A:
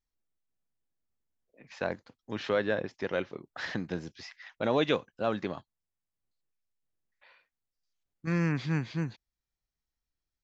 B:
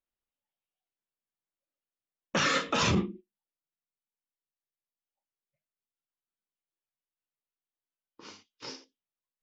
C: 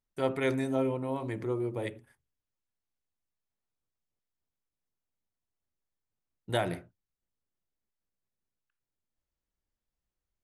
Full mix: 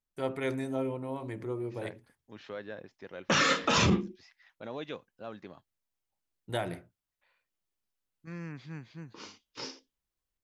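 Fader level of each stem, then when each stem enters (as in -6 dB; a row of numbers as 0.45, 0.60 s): -13.0, +1.5, -3.5 dB; 0.00, 0.95, 0.00 s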